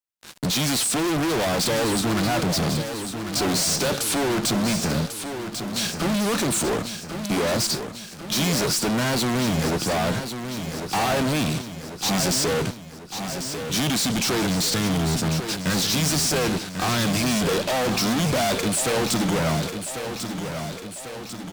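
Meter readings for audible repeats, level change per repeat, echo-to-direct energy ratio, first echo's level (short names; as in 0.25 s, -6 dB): 4, -5.0 dB, -7.0 dB, -8.5 dB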